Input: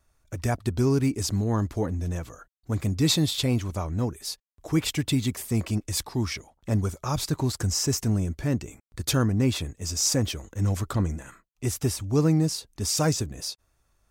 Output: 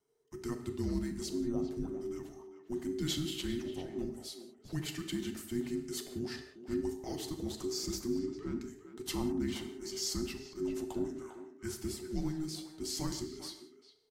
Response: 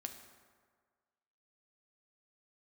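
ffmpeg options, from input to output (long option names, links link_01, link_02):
-filter_complex "[0:a]asettb=1/sr,asplit=3[link_01][link_02][link_03];[link_01]atrim=end=8.194[link_04];[link_02]atrim=start=8.19:end=8.6,asetpts=PTS-STARTPTS,afade=type=in:duration=0.004:curve=qsin,afade=type=out:start_time=0.406:duration=0.004:curve=qsin,adynamicsmooth=sensitivity=3.5:basefreq=4600[link_05];[link_03]atrim=start=8.596[link_06];[link_04][link_05]acrossfade=duration=0.004:curve1=hsin:curve2=qsin[link_07];[link_07][link_06]acrossfade=duration=0.004:curve1=qsin:curve2=hsin,asettb=1/sr,asplit=3[link_08][link_09][link_10];[link_08]atrim=end=11.214[link_11];[link_09]atrim=start=11.21:end=11.75,asetpts=PTS-STARTPTS,afade=type=in:duration=0.004:curve=qsin,afade=type=out:start_time=0.536:duration=0.004:curve=qsin,equalizer=frequency=1900:width=2.3:gain=7[link_12];[link_10]atrim=start=11.746[link_13];[link_11][link_12]acrossfade=duration=0.004:curve1=hsin:curve2=qsin[link_14];[link_14][link_13]acrossfade=duration=0.004:curve1=qsin:curve2=hsin,afreqshift=-470,asplit=2[link_15][link_16];[link_16]adelay=400,highpass=300,lowpass=3400,asoftclip=type=hard:threshold=-21.5dB,volume=-10dB[link_17];[link_15][link_17]amix=inputs=2:normalize=0[link_18];[1:a]atrim=start_sample=2205,afade=type=out:start_time=0.27:duration=0.01,atrim=end_sample=12348,asetrate=48510,aresample=44100[link_19];[link_18][link_19]afir=irnorm=-1:irlink=0,volume=-7.5dB" -ar 48000 -c:a aac -b:a 96k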